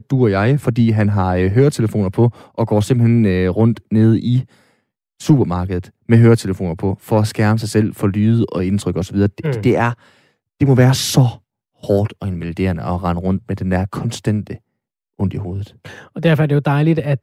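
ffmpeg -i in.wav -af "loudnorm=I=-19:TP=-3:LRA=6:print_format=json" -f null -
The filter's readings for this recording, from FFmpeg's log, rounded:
"input_i" : "-16.6",
"input_tp" : "-1.3",
"input_lra" : "3.5",
"input_thresh" : "-27.2",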